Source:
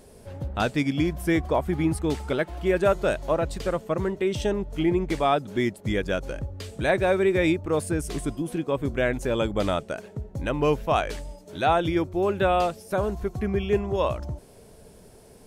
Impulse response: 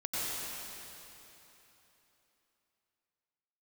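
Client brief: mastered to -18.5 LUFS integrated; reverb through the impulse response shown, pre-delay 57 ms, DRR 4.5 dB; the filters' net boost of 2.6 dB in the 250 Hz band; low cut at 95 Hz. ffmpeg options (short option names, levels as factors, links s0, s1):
-filter_complex "[0:a]highpass=95,equalizer=f=250:t=o:g=4,asplit=2[s0][s1];[1:a]atrim=start_sample=2205,adelay=57[s2];[s1][s2]afir=irnorm=-1:irlink=0,volume=0.282[s3];[s0][s3]amix=inputs=2:normalize=0,volume=1.78"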